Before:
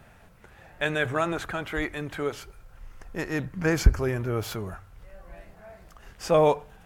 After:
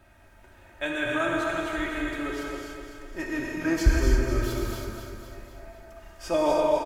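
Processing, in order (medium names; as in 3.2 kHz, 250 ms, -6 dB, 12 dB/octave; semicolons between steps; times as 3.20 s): comb 3.2 ms, depth 73%; feedback delay 251 ms, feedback 55%, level -7 dB; gated-style reverb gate 360 ms flat, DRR -2 dB; trim -6.5 dB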